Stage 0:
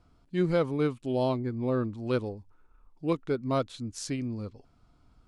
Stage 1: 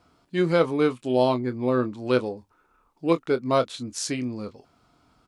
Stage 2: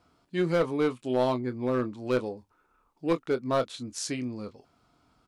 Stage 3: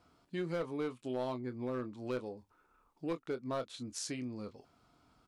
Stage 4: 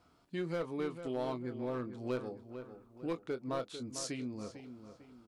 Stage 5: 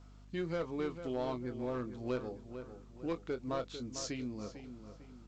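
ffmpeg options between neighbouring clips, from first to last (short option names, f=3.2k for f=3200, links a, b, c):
-filter_complex "[0:a]highpass=f=340:p=1,asplit=2[a][b];[b]adelay=24,volume=-11dB[c];[a][c]amix=inputs=2:normalize=0,volume=8dB"
-af "aeval=exprs='clip(val(0),-1,0.178)':c=same,volume=-4dB"
-af "acompressor=threshold=-39dB:ratio=2,volume=-2dB"
-filter_complex "[0:a]asplit=2[a][b];[b]adelay=449,lowpass=f=2.8k:p=1,volume=-10dB,asplit=2[c][d];[d]adelay=449,lowpass=f=2.8k:p=1,volume=0.41,asplit=2[e][f];[f]adelay=449,lowpass=f=2.8k:p=1,volume=0.41,asplit=2[g][h];[h]adelay=449,lowpass=f=2.8k:p=1,volume=0.41[i];[a][c][e][g][i]amix=inputs=5:normalize=0"
-af "aeval=exprs='val(0)+0.00178*(sin(2*PI*50*n/s)+sin(2*PI*2*50*n/s)/2+sin(2*PI*3*50*n/s)/3+sin(2*PI*4*50*n/s)/4+sin(2*PI*5*50*n/s)/5)':c=same" -ar 16000 -c:a pcm_alaw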